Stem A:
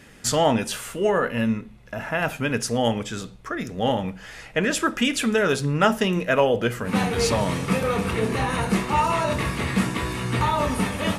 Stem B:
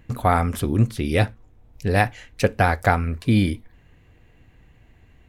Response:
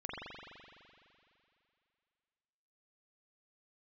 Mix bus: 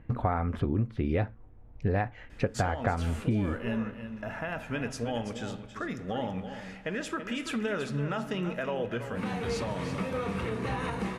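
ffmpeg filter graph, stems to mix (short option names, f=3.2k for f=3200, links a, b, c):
-filter_complex "[0:a]aemphasis=mode=reproduction:type=50fm,alimiter=limit=-17dB:level=0:latency=1:release=232,adelay=2300,volume=-7dB,asplit=3[a][b][c];[b]volume=-14.5dB[d];[c]volume=-9.5dB[e];[1:a]lowpass=1.7k,volume=-0.5dB[f];[2:a]atrim=start_sample=2205[g];[d][g]afir=irnorm=-1:irlink=0[h];[e]aecho=0:1:332:1[i];[a][f][h][i]amix=inputs=4:normalize=0,highshelf=f=8.5k:g=4,acompressor=threshold=-24dB:ratio=10"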